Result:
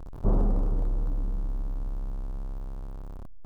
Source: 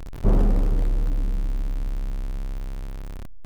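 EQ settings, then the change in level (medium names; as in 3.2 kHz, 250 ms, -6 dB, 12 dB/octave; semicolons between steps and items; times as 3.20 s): resonant high shelf 1.5 kHz -9 dB, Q 1.5; peaking EQ 2.1 kHz -2 dB; -5.0 dB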